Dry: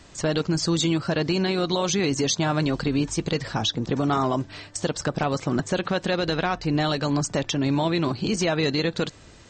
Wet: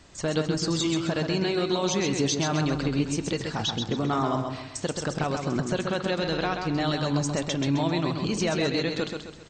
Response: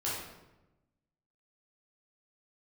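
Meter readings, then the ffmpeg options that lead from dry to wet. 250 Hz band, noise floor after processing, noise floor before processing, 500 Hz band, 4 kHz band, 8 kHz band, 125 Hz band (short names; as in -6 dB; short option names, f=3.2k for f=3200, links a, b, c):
-2.5 dB, -42 dBFS, -48 dBFS, -2.0 dB, -2.5 dB, -2.5 dB, -2.0 dB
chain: -filter_complex "[0:a]aecho=1:1:131|262|393|524|655:0.531|0.212|0.0849|0.034|0.0136,asplit=2[a][b];[1:a]atrim=start_sample=2205[c];[b][c]afir=irnorm=-1:irlink=0,volume=-20dB[d];[a][d]amix=inputs=2:normalize=0,volume=-4.5dB"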